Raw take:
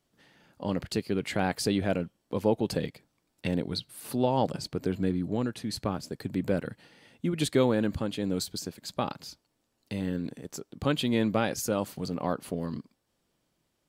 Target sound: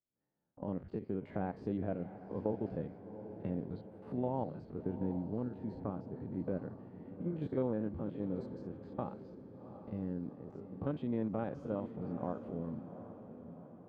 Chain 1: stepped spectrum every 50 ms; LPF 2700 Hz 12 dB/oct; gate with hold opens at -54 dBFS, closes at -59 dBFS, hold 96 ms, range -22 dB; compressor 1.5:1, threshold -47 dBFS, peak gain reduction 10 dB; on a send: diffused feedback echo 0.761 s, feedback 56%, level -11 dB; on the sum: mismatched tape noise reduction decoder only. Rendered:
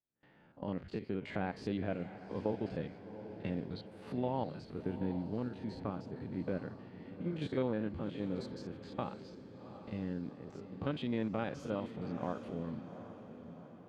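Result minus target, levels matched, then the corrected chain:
2000 Hz band +9.0 dB
stepped spectrum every 50 ms; LPF 1000 Hz 12 dB/oct; gate with hold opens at -54 dBFS, closes at -59 dBFS, hold 96 ms, range -22 dB; compressor 1.5:1, threshold -47 dBFS, peak gain reduction 10 dB; on a send: diffused feedback echo 0.761 s, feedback 56%, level -11 dB; on the sum: mismatched tape noise reduction decoder only

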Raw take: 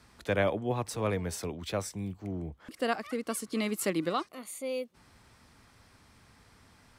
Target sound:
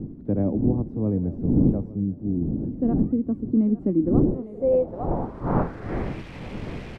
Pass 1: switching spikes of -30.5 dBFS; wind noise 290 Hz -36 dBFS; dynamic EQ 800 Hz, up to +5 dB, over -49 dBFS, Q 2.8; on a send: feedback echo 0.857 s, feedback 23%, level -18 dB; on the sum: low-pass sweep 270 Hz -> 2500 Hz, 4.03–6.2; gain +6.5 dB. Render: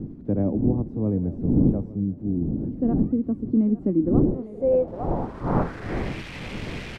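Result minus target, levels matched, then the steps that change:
switching spikes: distortion +9 dB
change: switching spikes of -39.5 dBFS

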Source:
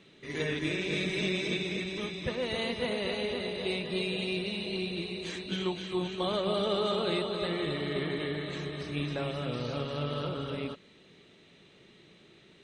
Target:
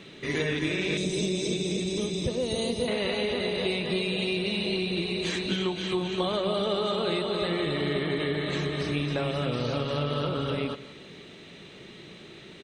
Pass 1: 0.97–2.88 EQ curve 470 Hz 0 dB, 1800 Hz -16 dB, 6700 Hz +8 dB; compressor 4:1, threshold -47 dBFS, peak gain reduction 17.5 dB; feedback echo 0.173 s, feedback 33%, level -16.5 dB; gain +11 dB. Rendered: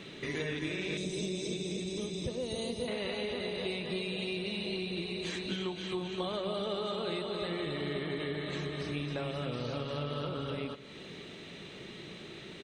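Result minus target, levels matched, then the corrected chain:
compressor: peak gain reduction +7.5 dB
0.97–2.88 EQ curve 470 Hz 0 dB, 1800 Hz -16 dB, 6700 Hz +8 dB; compressor 4:1, threshold -37 dBFS, peak gain reduction 10 dB; feedback echo 0.173 s, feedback 33%, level -16.5 dB; gain +11 dB

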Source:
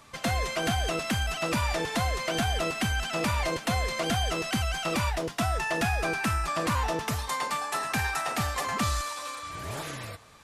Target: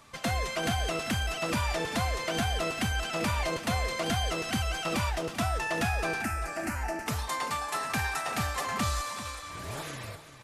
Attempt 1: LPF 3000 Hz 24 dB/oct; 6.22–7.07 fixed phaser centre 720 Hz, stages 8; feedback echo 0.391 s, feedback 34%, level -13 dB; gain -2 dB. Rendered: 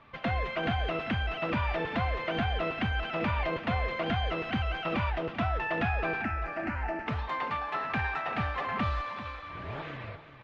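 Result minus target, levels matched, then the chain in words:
4000 Hz band -5.0 dB
6.22–7.07 fixed phaser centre 720 Hz, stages 8; feedback echo 0.391 s, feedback 34%, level -13 dB; gain -2 dB

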